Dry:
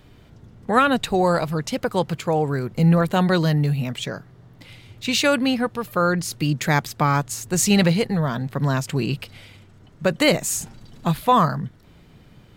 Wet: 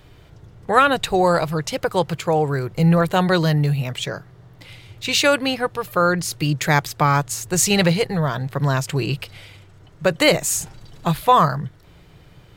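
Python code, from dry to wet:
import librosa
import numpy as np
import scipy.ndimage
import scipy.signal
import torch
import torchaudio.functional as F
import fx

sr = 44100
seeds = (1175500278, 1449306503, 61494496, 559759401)

y = fx.peak_eq(x, sr, hz=230.0, db=-15.0, octaves=0.36)
y = y * 10.0 ** (3.0 / 20.0)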